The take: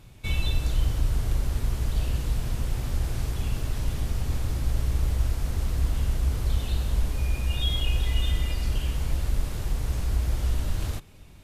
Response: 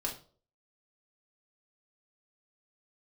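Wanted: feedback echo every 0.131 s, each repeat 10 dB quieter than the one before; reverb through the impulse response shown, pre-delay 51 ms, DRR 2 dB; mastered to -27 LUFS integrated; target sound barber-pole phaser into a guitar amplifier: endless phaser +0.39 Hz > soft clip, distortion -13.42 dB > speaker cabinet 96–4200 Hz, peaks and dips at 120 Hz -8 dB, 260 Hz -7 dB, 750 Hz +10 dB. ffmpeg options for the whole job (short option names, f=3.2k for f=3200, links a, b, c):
-filter_complex "[0:a]aecho=1:1:131|262|393|524:0.316|0.101|0.0324|0.0104,asplit=2[a][b];[1:a]atrim=start_sample=2205,adelay=51[c];[b][c]afir=irnorm=-1:irlink=0,volume=-4.5dB[d];[a][d]amix=inputs=2:normalize=0,asplit=2[e][f];[f]afreqshift=0.39[g];[e][g]amix=inputs=2:normalize=1,asoftclip=threshold=-20dB,highpass=96,equalizer=f=120:t=q:w=4:g=-8,equalizer=f=260:t=q:w=4:g=-7,equalizer=f=750:t=q:w=4:g=10,lowpass=f=4.2k:w=0.5412,lowpass=f=4.2k:w=1.3066,volume=10.5dB"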